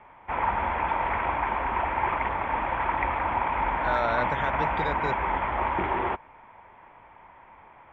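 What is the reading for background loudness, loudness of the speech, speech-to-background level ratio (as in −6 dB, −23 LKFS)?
−27.5 LKFS, −31.0 LKFS, −3.5 dB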